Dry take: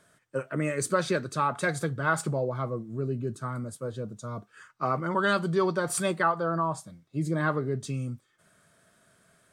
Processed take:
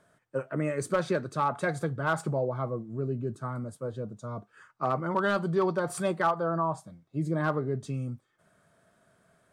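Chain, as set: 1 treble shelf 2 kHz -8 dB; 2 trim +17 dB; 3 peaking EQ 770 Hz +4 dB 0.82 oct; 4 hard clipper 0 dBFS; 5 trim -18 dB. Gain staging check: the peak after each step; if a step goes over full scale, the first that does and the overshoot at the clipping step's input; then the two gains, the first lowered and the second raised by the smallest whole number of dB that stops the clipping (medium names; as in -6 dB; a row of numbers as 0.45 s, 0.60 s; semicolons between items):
-13.0 dBFS, +4.0 dBFS, +5.5 dBFS, 0.0 dBFS, -18.0 dBFS; step 2, 5.5 dB; step 2 +11 dB, step 5 -12 dB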